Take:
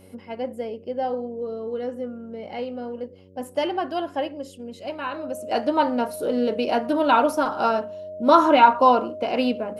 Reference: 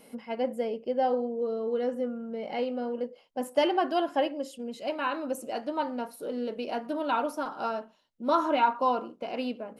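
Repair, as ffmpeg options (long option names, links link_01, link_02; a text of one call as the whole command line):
ffmpeg -i in.wav -af "bandreject=frequency=93.6:width_type=h:width=4,bandreject=frequency=187.2:width_type=h:width=4,bandreject=frequency=280.8:width_type=h:width=4,bandreject=frequency=374.4:width_type=h:width=4,bandreject=frequency=468:width_type=h:width=4,bandreject=frequency=561.6:width_type=h:width=4,bandreject=frequency=620:width=30,asetnsamples=nb_out_samples=441:pad=0,asendcmd='5.51 volume volume -10dB',volume=0dB" out.wav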